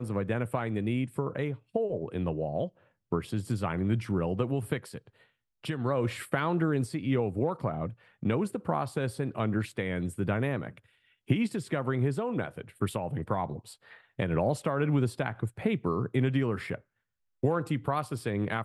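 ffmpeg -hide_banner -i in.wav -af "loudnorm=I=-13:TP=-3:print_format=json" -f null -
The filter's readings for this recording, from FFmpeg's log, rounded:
"input_i" : "-31.2",
"input_tp" : "-11.9",
"input_lra" : "1.8",
"input_thresh" : "-41.5",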